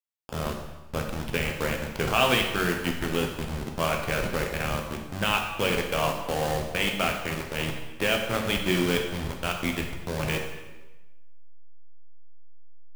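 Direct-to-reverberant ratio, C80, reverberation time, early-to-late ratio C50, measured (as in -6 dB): 2.0 dB, 7.5 dB, 1.1 s, 5.5 dB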